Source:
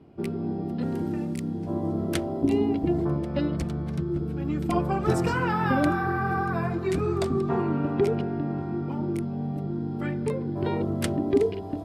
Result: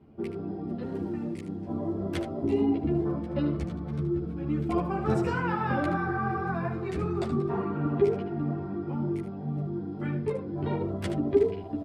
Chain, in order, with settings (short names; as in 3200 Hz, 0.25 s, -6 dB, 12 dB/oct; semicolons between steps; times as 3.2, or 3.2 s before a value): LPF 2800 Hz 6 dB/oct; echo 75 ms -10 dB; ensemble effect